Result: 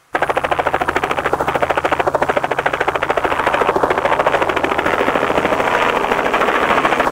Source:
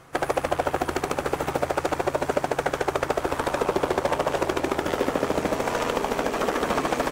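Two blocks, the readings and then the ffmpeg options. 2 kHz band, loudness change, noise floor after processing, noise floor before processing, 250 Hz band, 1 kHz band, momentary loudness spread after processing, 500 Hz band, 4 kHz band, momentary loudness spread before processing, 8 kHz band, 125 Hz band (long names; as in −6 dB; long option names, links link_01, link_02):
+13.5 dB, +9.5 dB, −28 dBFS, −36 dBFS, +5.5 dB, +11.5 dB, 3 LU, +7.5 dB, +9.5 dB, 2 LU, +1.5 dB, +4.5 dB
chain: -af "afwtdn=0.0251,tiltshelf=frequency=790:gain=-7,alimiter=level_in=13.5dB:limit=-1dB:release=50:level=0:latency=1,volume=-1dB"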